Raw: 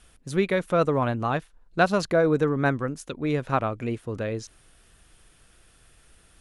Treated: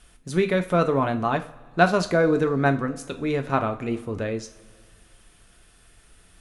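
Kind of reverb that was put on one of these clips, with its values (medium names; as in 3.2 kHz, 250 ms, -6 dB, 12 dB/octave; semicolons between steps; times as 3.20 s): two-slope reverb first 0.34 s, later 2.1 s, from -20 dB, DRR 6 dB; trim +1 dB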